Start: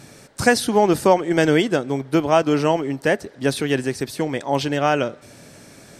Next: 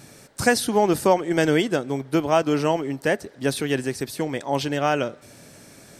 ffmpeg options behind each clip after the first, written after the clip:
-af "highshelf=f=11k:g=8,volume=-3dB"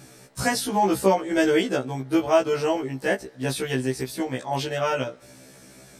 -af "afftfilt=real='re*1.73*eq(mod(b,3),0)':imag='im*1.73*eq(mod(b,3),0)':win_size=2048:overlap=0.75,volume=1dB"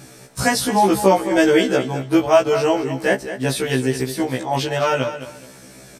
-af "aecho=1:1:213|426|639:0.266|0.0639|0.0153,volume=5.5dB"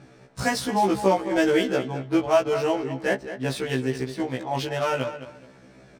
-af "adynamicsmooth=sensitivity=5:basefreq=2.8k,volume=-6dB"

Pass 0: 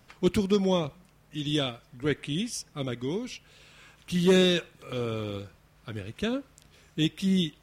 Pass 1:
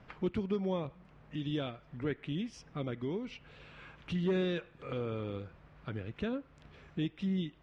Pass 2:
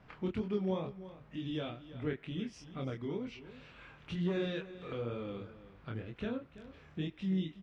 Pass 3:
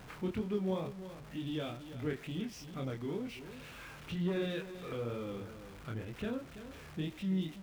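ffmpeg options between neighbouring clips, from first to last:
-af "lowpass=2.3k,acompressor=threshold=-43dB:ratio=2,volume=3dB"
-af "flanger=delay=22.5:depth=4.2:speed=2.1,aecho=1:1:332:0.178,volume=1dB"
-af "aeval=exprs='val(0)+0.5*0.00422*sgn(val(0))':c=same,volume=-1dB"

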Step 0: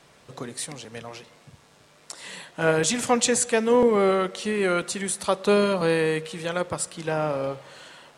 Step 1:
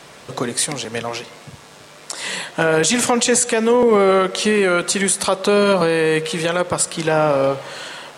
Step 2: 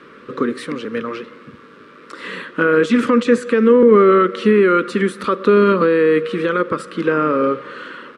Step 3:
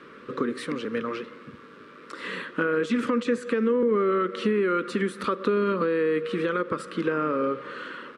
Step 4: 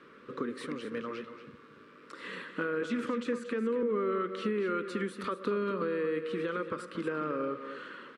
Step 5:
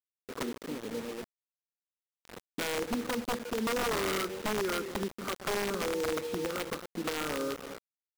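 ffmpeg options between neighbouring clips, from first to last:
-filter_complex "[0:a]lowshelf=f=140:g=-7,asplit=2[a][b];[b]acompressor=threshold=-29dB:ratio=6,volume=2.5dB[c];[a][c]amix=inputs=2:normalize=0,alimiter=level_in=11.5dB:limit=-1dB:release=50:level=0:latency=1,volume=-5dB"
-af "firequalizer=gain_entry='entry(140,0);entry(220,14);entry(490,11);entry(720,-15);entry(1200,14);entry(1900,5);entry(6700,-16)':delay=0.05:min_phase=1,volume=-7.5dB"
-af "acompressor=threshold=-19dB:ratio=2.5,volume=-4.5dB"
-af "aecho=1:1:233:0.299,volume=-8dB"
-af "afwtdn=0.0158,acrusher=bits=6:mix=0:aa=0.000001,aeval=exprs='(mod(18.8*val(0)+1,2)-1)/18.8':c=same"

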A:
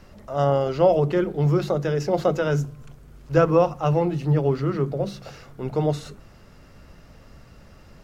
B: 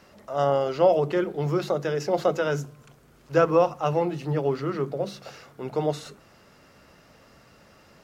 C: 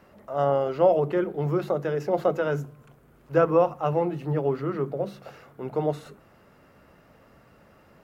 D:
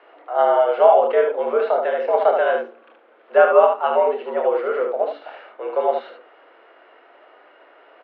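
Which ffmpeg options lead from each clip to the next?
-af "highpass=f=340:p=1"
-af "equalizer=f=5.5k:t=o:w=1.8:g=-12.5"
-af "aecho=1:1:28|75:0.473|0.596,highpass=f=300:t=q:w=0.5412,highpass=f=300:t=q:w=1.307,lowpass=f=3.5k:t=q:w=0.5176,lowpass=f=3.5k:t=q:w=0.7071,lowpass=f=3.5k:t=q:w=1.932,afreqshift=89,volume=6dB"

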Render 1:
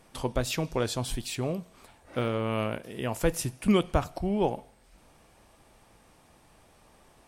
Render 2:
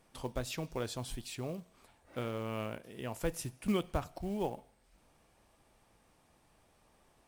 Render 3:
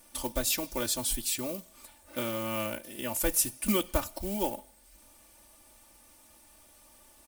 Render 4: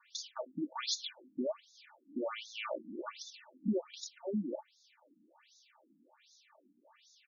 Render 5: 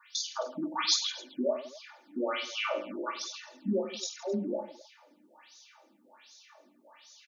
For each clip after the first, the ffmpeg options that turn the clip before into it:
-af "acrusher=bits=6:mode=log:mix=0:aa=0.000001,volume=-9dB"
-af "aemphasis=mode=production:type=75fm,aecho=1:1:3.4:0.91,volume=2.5dB"
-af "alimiter=limit=-22.5dB:level=0:latency=1:release=29,afftfilt=real='re*between(b*sr/1024,220*pow(5000/220,0.5+0.5*sin(2*PI*1.3*pts/sr))/1.41,220*pow(5000/220,0.5+0.5*sin(2*PI*1.3*pts/sr))*1.41)':imag='im*between(b*sr/1024,220*pow(5000/220,0.5+0.5*sin(2*PI*1.3*pts/sr))/1.41,220*pow(5000/220,0.5+0.5*sin(2*PI*1.3*pts/sr))*1.41)':win_size=1024:overlap=0.75,volume=4dB"
-af "highpass=f=410:p=1,aecho=1:1:20|50|95|162.5|263.8:0.631|0.398|0.251|0.158|0.1,volume=7dB"

